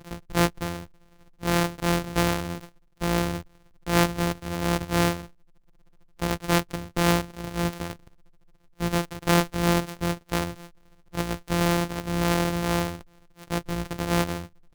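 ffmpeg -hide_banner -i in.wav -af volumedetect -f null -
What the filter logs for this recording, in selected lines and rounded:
mean_volume: -27.4 dB
max_volume: -8.2 dB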